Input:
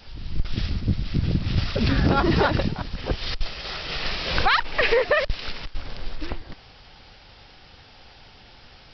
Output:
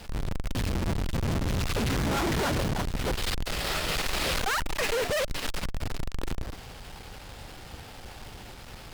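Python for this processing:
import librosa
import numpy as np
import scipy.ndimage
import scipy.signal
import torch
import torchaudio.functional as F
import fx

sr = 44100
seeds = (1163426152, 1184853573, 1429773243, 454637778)

y = fx.halfwave_hold(x, sr)
y = fx.tube_stage(y, sr, drive_db=31.0, bias=0.75)
y = fx.doppler_dist(y, sr, depth_ms=0.22)
y = y * 10.0 ** (5.0 / 20.0)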